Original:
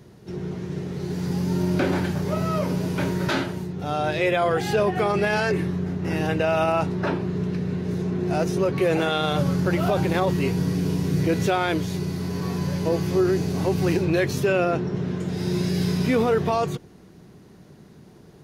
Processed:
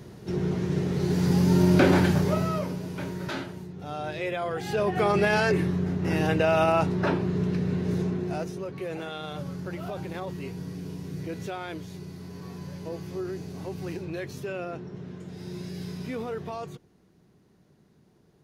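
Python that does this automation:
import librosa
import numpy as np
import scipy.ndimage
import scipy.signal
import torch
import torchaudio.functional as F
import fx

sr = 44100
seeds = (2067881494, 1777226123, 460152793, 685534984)

y = fx.gain(x, sr, db=fx.line((2.16, 3.5), (2.8, -9.0), (4.55, -9.0), (5.08, -0.5), (8.01, -0.5), (8.61, -13.0)))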